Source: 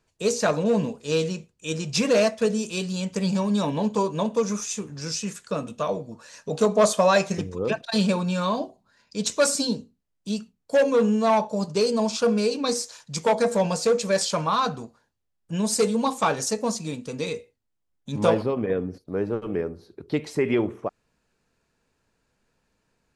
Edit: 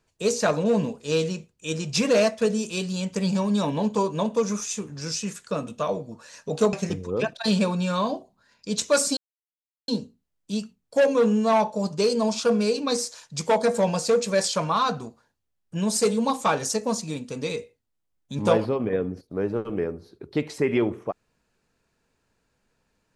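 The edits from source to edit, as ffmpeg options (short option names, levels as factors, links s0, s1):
-filter_complex "[0:a]asplit=3[s0][s1][s2];[s0]atrim=end=6.732[s3];[s1]atrim=start=7.208:end=9.65,asetpts=PTS-STARTPTS,afade=t=out:st=2.438:d=0.004:c=hsin,apad=pad_dur=0.71[s4];[s2]atrim=start=9.65,asetpts=PTS-STARTPTS,afade=t=in:d=0.004:c=hsin[s5];[s4][s5]concat=n=2:v=0:a=1[s6];[s3][s6]acrossfade=d=0.004:c1=hsin:c2=hsin"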